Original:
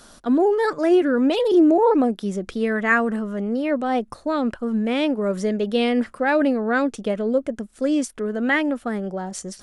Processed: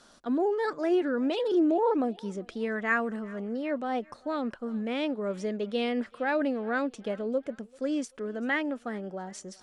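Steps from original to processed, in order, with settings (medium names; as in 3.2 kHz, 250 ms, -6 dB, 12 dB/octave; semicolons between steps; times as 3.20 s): low-pass 7.4 kHz 12 dB/octave; bass shelf 110 Hz -10 dB; thinning echo 388 ms, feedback 51%, high-pass 600 Hz, level -22.5 dB; trim -8 dB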